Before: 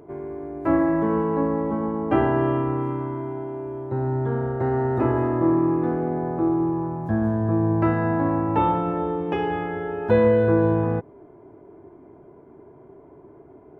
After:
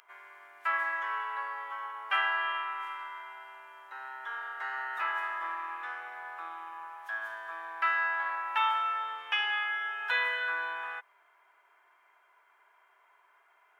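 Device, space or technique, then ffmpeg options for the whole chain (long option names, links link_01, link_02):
headphones lying on a table: -af "highpass=frequency=1400:width=0.5412,highpass=frequency=1400:width=1.3066,equalizer=frequency=3100:width_type=o:width=0.35:gain=6,volume=6.5dB"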